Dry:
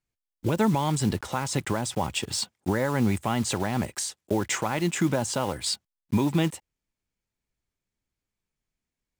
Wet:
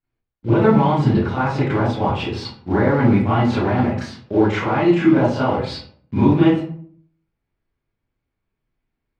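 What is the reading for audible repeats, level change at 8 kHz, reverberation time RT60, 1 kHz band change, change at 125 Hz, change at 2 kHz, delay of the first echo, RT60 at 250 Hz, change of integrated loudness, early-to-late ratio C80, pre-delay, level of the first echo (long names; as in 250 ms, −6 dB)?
no echo audible, below −15 dB, 0.55 s, +9.0 dB, +9.5 dB, +6.5 dB, no echo audible, 0.70 s, +9.0 dB, 6.0 dB, 28 ms, no echo audible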